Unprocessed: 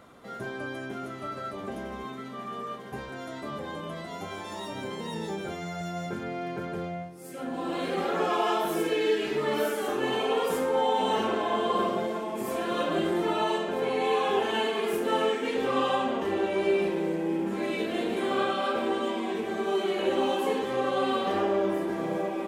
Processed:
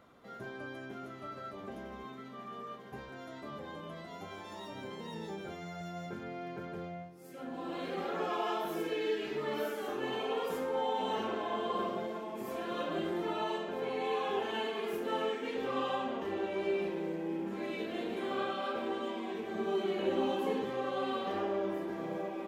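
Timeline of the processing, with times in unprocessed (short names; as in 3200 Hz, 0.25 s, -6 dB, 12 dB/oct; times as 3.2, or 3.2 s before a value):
19.54–20.7 bell 150 Hz +7.5 dB 2.2 oct
whole clip: bell 9000 Hz -8 dB 0.6 oct; gain -8 dB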